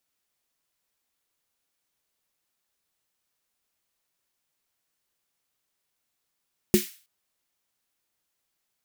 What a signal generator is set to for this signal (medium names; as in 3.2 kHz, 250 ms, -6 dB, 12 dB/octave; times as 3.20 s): snare drum length 0.32 s, tones 210 Hz, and 360 Hz, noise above 1.8 kHz, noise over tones -10.5 dB, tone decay 0.14 s, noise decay 0.41 s